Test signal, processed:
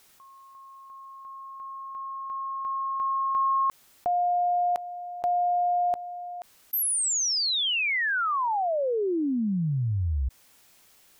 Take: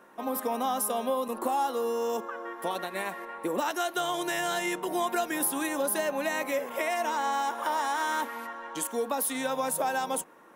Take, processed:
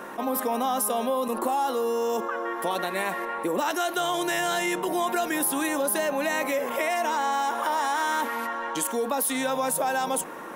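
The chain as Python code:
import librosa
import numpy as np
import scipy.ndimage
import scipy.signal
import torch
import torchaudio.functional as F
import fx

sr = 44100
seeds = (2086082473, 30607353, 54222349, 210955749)

y = fx.env_flatten(x, sr, amount_pct=50)
y = F.gain(torch.from_numpy(y), 1.5).numpy()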